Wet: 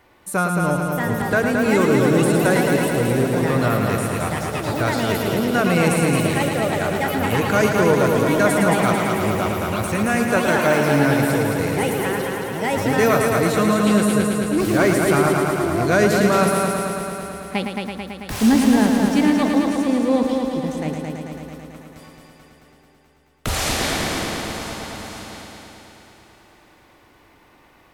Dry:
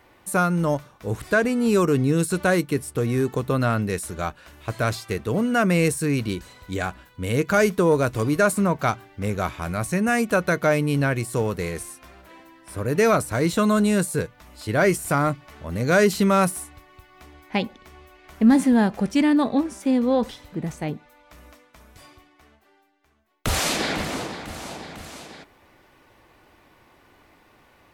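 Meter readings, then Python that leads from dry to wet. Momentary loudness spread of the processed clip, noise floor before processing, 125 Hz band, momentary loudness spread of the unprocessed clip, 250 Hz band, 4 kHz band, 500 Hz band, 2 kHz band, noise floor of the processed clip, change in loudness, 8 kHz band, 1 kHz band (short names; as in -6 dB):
12 LU, -57 dBFS, +3.0 dB, 14 LU, +3.5 dB, +5.0 dB, +4.0 dB, +4.5 dB, -53 dBFS, +3.5 dB, +3.5 dB, +5.0 dB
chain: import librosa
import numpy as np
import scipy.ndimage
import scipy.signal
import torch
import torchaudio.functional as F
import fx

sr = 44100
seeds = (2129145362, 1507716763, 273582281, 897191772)

y = fx.echo_pitch(x, sr, ms=719, semitones=5, count=2, db_per_echo=-6.0)
y = fx.echo_heads(y, sr, ms=110, heads='first and second', feedback_pct=72, wet_db=-7.0)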